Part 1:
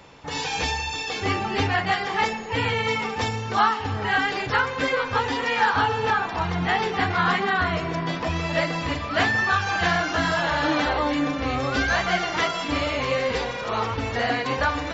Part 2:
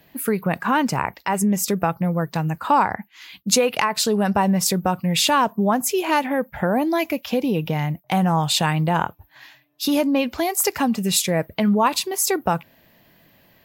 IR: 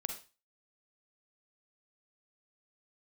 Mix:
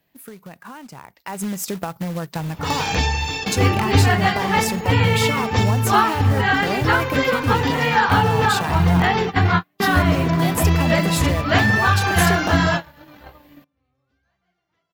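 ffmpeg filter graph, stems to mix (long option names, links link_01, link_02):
-filter_complex "[0:a]equalizer=frequency=100:width_type=o:width=2.6:gain=10,adelay=2350,volume=3dB[link_01];[1:a]acompressor=threshold=-20dB:ratio=16,acrusher=bits=3:mode=log:mix=0:aa=0.000001,volume=-2dB,afade=type=in:start_time=1.14:duration=0.33:silence=0.251189,asplit=2[link_02][link_03];[link_03]apad=whole_len=762234[link_04];[link_01][link_04]sidechaingate=range=-54dB:threshold=-52dB:ratio=16:detection=peak[link_05];[link_05][link_02]amix=inputs=2:normalize=0"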